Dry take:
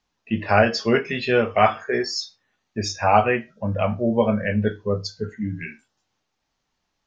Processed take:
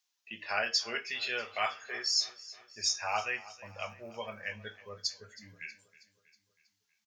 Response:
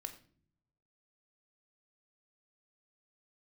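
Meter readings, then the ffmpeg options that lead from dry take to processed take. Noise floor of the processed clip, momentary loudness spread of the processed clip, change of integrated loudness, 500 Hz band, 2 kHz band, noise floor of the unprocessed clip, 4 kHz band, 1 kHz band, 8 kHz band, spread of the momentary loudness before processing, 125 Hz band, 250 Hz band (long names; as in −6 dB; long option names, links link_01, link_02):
−81 dBFS, 17 LU, −11.5 dB, −21.0 dB, −9.5 dB, −77 dBFS, −1.5 dB, −16.0 dB, can't be measured, 12 LU, −28.0 dB, −29.0 dB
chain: -af "aderivative,aecho=1:1:320|640|960|1280|1600:0.112|0.0617|0.0339|0.0187|0.0103,asubboost=boost=8:cutoff=86,volume=2dB"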